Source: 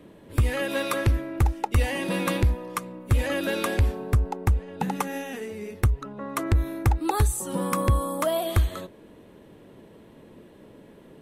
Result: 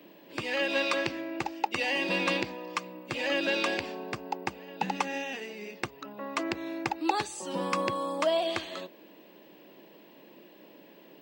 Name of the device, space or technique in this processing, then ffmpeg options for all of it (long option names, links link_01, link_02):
old television with a line whistle: -af "lowpass=9900,highpass=frequency=220:width=0.5412,highpass=frequency=220:width=1.3066,equalizer=frequency=240:width_type=q:width=4:gain=-8,equalizer=frequency=440:width_type=q:width=4:gain=-7,equalizer=frequency=1300:width_type=q:width=4:gain=-6,equalizer=frequency=2700:width_type=q:width=4:gain=7,equalizer=frequency=4800:width_type=q:width=4:gain=8,lowpass=frequency=7800:width=0.5412,lowpass=frequency=7800:width=1.3066,highshelf=frequency=10000:gain=-11,aeval=exprs='val(0)+0.000891*sin(2*PI*15734*n/s)':channel_layout=same"